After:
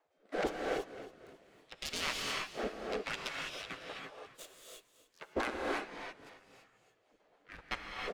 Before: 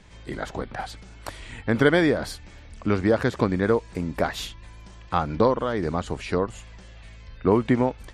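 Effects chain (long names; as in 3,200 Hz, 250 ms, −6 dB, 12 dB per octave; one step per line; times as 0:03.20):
phase distortion by the signal itself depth 0.67 ms
wind on the microphone 180 Hz −21 dBFS
gate on every frequency bin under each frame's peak −20 dB weak
low-shelf EQ 360 Hz +3.5 dB
noise gate −32 dBFS, range −27 dB
transient designer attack −2 dB, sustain −7 dB
brickwall limiter −20.5 dBFS, peak gain reduction 11 dB
rotating-speaker cabinet horn 1.2 Hz, later 7.5 Hz, at 0:04.81
on a send: echo with shifted repeats 276 ms, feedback 39%, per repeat −43 Hz, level −14 dB
on the sum: reverb whose tail is shaped and stops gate 360 ms rising, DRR −0.5 dB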